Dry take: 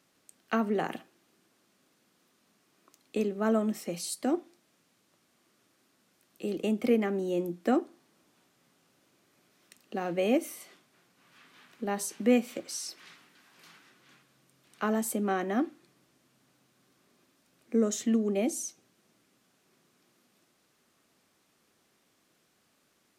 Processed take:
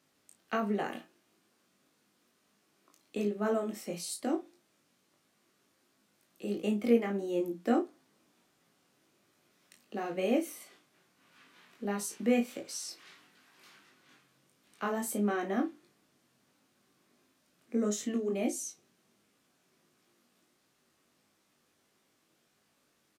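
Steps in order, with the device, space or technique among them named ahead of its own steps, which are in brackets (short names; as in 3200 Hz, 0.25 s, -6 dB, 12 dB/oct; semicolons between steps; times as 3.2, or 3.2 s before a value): double-tracked vocal (doubler 34 ms -10 dB; chorus 1.5 Hz, delay 19 ms, depth 2.5 ms)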